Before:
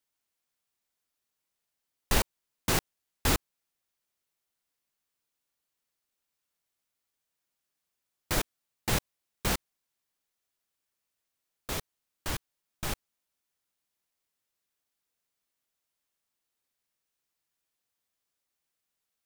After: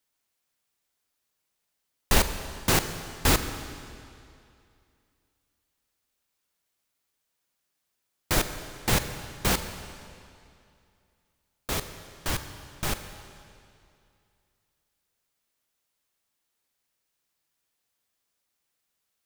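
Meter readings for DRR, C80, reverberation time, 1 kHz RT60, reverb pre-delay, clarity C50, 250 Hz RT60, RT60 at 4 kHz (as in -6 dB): 9.0 dB, 10.0 dB, 2.5 s, 2.5 s, 30 ms, 9.5 dB, 2.5 s, 2.3 s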